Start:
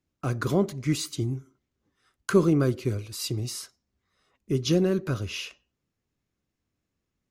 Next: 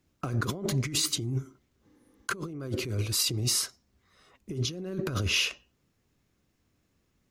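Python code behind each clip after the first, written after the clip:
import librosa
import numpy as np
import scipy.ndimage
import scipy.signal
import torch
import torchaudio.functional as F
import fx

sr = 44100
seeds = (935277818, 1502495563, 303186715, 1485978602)

y = fx.spec_repair(x, sr, seeds[0], start_s=1.92, length_s=0.33, low_hz=200.0, high_hz=8800.0, source='before')
y = fx.over_compress(y, sr, threshold_db=-34.0, ratio=-1.0)
y = y * librosa.db_to_amplitude(2.5)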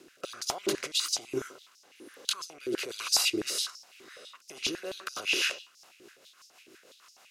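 y = fx.bin_compress(x, sr, power=0.6)
y = fx.rotary_switch(y, sr, hz=1.2, then_hz=6.3, switch_at_s=5.33)
y = fx.filter_held_highpass(y, sr, hz=12.0, low_hz=350.0, high_hz=5300.0)
y = y * librosa.db_to_amplitude(-3.0)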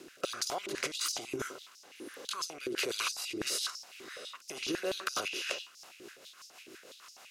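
y = fx.over_compress(x, sr, threshold_db=-35.0, ratio=-1.0)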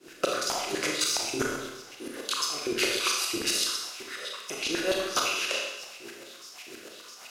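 y = fx.tremolo_shape(x, sr, shape='saw_up', hz=7.7, depth_pct=95)
y = fx.rev_schroeder(y, sr, rt60_s=1.0, comb_ms=26, drr_db=-0.5)
y = y * librosa.db_to_amplitude(9.0)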